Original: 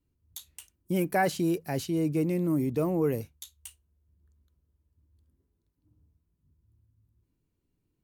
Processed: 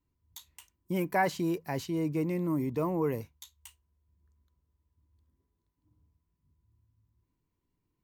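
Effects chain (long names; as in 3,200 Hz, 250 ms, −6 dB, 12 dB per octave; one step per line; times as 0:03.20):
thirty-one-band graphic EQ 1,000 Hz +12 dB, 2,000 Hz +5 dB, 10,000 Hz −9 dB
level −3.5 dB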